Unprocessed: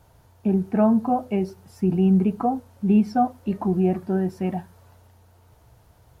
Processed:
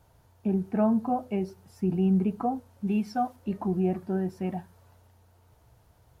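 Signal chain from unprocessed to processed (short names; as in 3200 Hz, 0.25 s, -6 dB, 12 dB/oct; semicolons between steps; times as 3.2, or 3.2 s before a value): 2.87–3.36 tilt shelf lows -4.5 dB; gain -5.5 dB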